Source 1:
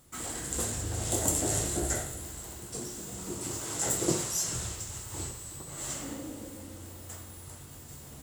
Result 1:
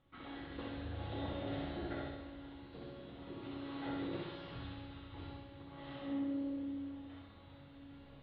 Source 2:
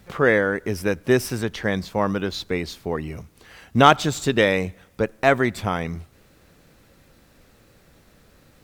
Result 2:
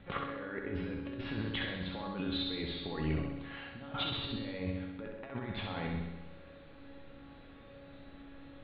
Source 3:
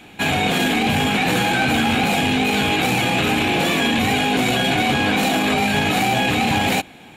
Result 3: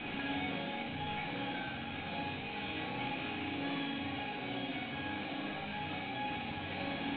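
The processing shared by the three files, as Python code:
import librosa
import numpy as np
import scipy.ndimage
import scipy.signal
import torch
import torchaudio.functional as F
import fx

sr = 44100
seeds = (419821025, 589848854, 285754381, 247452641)

y = scipy.signal.sosfilt(scipy.signal.butter(12, 3800.0, 'lowpass', fs=sr, output='sos'), x)
y = fx.over_compress(y, sr, threshold_db=-31.0, ratio=-1.0)
y = fx.comb_fb(y, sr, f0_hz=280.0, decay_s=0.95, harmonics='all', damping=0.0, mix_pct=90)
y = fx.room_flutter(y, sr, wall_m=11.1, rt60_s=1.0)
y = y * 10.0 ** (7.0 / 20.0)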